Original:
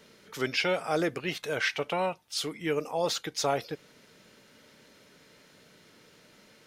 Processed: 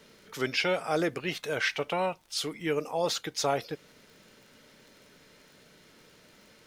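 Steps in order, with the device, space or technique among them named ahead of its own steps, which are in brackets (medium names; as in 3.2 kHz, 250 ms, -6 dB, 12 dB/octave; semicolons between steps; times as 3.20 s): vinyl LP (crackle 32 per s -46 dBFS; pink noise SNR 38 dB)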